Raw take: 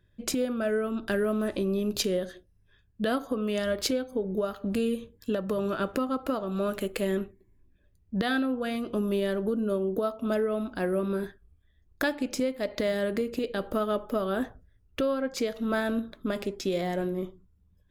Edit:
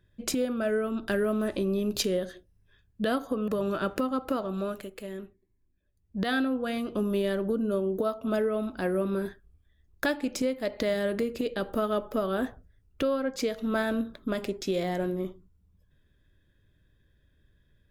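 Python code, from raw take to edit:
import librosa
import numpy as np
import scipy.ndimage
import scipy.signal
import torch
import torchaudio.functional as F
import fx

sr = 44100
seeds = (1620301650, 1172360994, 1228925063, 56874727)

y = fx.edit(x, sr, fx.cut(start_s=3.48, length_s=1.98),
    fx.fade_down_up(start_s=6.46, length_s=1.84, db=-10.5, fade_s=0.4), tone=tone)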